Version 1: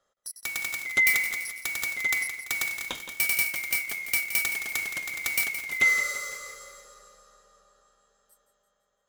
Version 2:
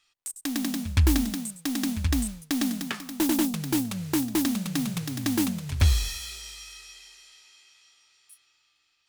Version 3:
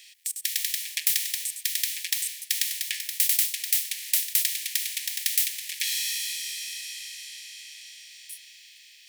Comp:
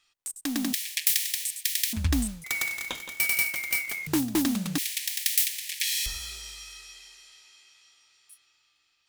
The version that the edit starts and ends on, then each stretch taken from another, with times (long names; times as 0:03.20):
2
0:00.73–0:01.93: punch in from 3
0:02.44–0:04.07: punch in from 1
0:04.78–0:06.06: punch in from 3